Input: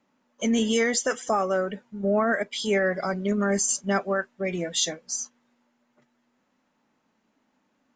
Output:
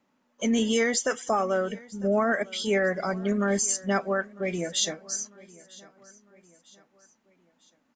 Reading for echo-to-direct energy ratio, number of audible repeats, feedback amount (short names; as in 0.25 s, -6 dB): -21.5 dB, 2, 45%